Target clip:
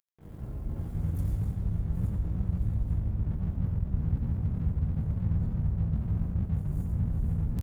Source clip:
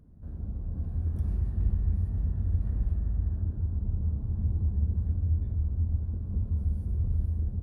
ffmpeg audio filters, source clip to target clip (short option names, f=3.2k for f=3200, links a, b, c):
-filter_complex "[0:a]highpass=49,asubboost=boost=10:cutoff=87,aecho=1:1:7.4:0.49,areverse,acompressor=threshold=-24dB:ratio=8,areverse,crystalizer=i=7:c=0,aeval=exprs='sgn(val(0))*max(abs(val(0))-0.00794,0)':c=same,asplit=4[a][b][c][d];[b]asetrate=33038,aresample=44100,atempo=1.33484,volume=-2dB[e];[c]asetrate=55563,aresample=44100,atempo=0.793701,volume=0dB[f];[d]asetrate=88200,aresample=44100,atempo=0.5,volume=-1dB[g];[a][e][f][g]amix=inputs=4:normalize=0,aecho=1:1:86:0.282,volume=-5.5dB"